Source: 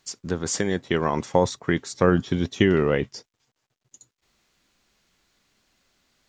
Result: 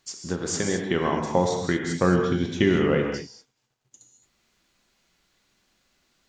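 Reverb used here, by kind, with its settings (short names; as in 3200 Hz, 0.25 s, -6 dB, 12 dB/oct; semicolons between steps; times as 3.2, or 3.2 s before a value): non-linear reverb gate 0.25 s flat, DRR 2 dB; gain -2.5 dB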